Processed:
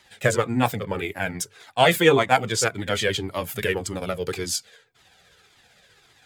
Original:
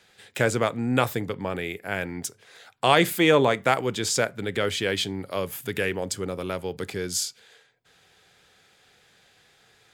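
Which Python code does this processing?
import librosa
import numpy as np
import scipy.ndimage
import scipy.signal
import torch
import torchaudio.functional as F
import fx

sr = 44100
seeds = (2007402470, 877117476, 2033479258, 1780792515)

y = fx.stretch_grains(x, sr, factor=0.63, grain_ms=130.0)
y = fx.comb_cascade(y, sr, direction='falling', hz=1.8)
y = y * librosa.db_to_amplitude(8.0)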